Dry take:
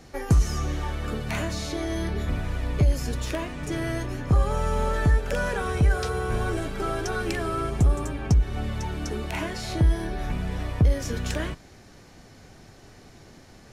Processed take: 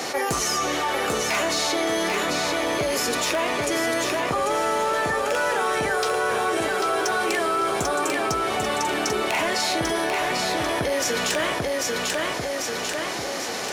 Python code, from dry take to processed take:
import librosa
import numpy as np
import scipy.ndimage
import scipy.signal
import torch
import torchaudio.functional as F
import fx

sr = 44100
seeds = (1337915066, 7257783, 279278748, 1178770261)

p1 = scipy.signal.sosfilt(scipy.signal.butter(2, 490.0, 'highpass', fs=sr, output='sos'), x)
p2 = fx.peak_eq(p1, sr, hz=1600.0, db=-3.5, octaves=0.21)
p3 = fx.rider(p2, sr, range_db=10, speed_s=2.0)
p4 = p2 + F.gain(torch.from_numpy(p3), 1.0).numpy()
p5 = np.clip(p4, -10.0 ** (-20.0 / 20.0), 10.0 ** (-20.0 / 20.0))
p6 = p5 + fx.echo_feedback(p5, sr, ms=793, feedback_pct=38, wet_db=-5.5, dry=0)
y = fx.env_flatten(p6, sr, amount_pct=70)